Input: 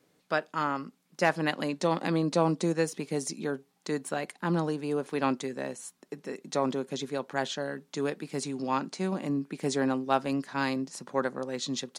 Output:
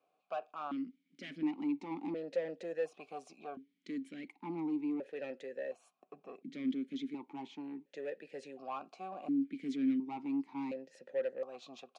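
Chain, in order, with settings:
0:06.00–0:06.55: spectral tilt −2.5 dB per octave
soft clipping −27 dBFS, distortion −8 dB
formant filter that steps through the vowels 1.4 Hz
level +3 dB

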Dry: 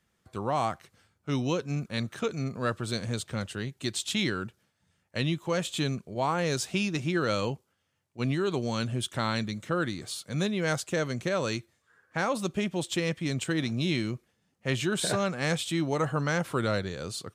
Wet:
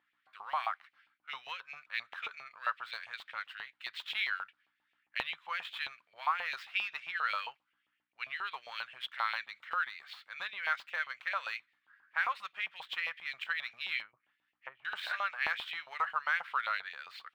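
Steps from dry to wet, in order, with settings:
gap after every zero crossing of 0.052 ms
0:14.01–0:14.85: treble cut that deepens with the level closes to 470 Hz, closed at −27.5 dBFS
guitar amp tone stack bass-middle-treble 10-0-10
mains hum 60 Hz, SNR 24 dB
high-frequency loss of the air 450 metres
auto-filter high-pass saw up 7.5 Hz 820–2,700 Hz
level +5.5 dB

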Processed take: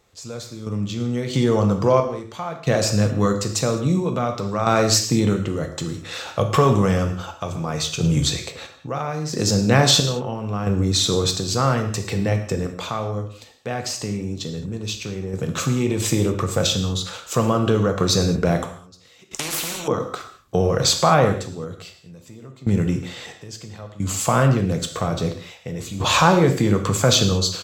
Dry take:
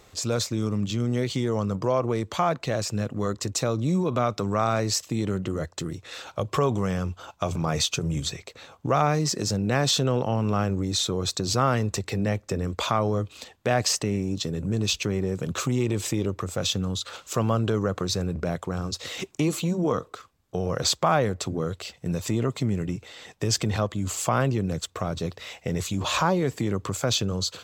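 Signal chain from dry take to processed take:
single-tap delay 109 ms −23 dB
sample-and-hold tremolo 1.5 Hz, depth 95%
reverb whose tail is shaped and stops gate 240 ms falling, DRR 4.5 dB
0:19.31–0:19.88: every bin compressed towards the loudest bin 4 to 1
level +8 dB

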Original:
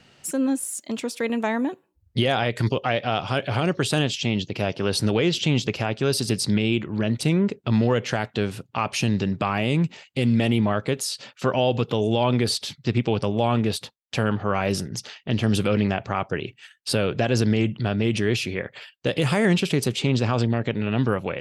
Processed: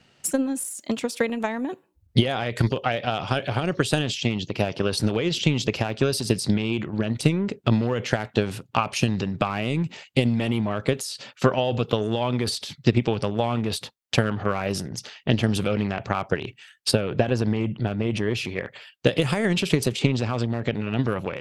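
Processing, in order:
0:16.91–0:18.45: high-shelf EQ 3,300 Hz −8.5 dB
transient designer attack +12 dB, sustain +8 dB
level −5.5 dB

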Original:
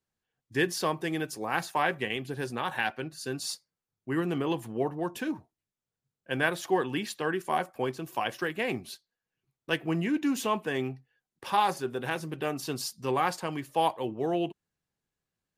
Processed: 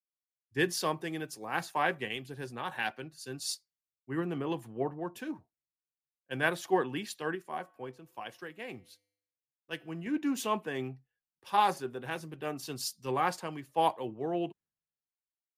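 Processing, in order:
0:07.35–0:10.06: tuned comb filter 100 Hz, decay 1.2 s, harmonics odd, mix 40%
multiband upward and downward expander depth 70%
level −4.5 dB

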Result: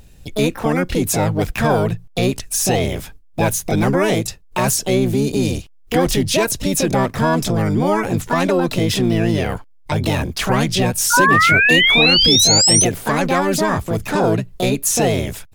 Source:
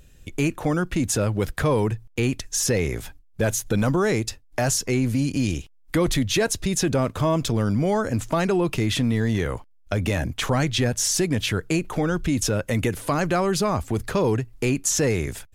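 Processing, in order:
sound drawn into the spectrogram rise, 0:11.13–0:12.85, 930–6,300 Hz −18 dBFS
pitch-shifted copies added +7 semitones −1 dB
level +2.5 dB

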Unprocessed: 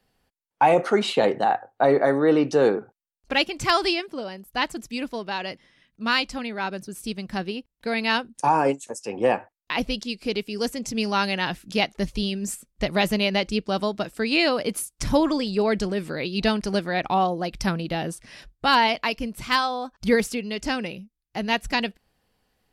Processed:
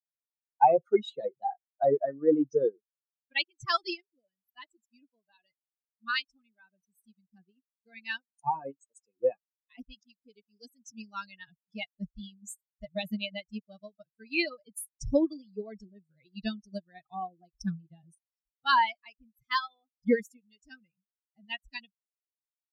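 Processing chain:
spectral dynamics exaggerated over time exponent 3
expander for the loud parts 1.5 to 1, over −45 dBFS
level +2 dB

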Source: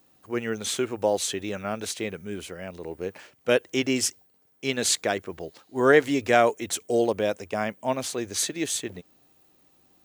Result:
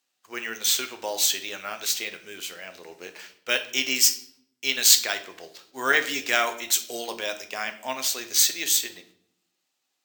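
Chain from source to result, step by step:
running median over 3 samples
meter weighting curve ITU-R 468
noise gate −54 dBFS, range −13 dB
dynamic equaliser 510 Hz, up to −5 dB, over −39 dBFS, Q 2.3
on a send at −6.5 dB: convolution reverb RT60 0.65 s, pre-delay 8 ms
on the sum: bad sample-rate conversion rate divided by 2×, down none, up hold
level −2.5 dB

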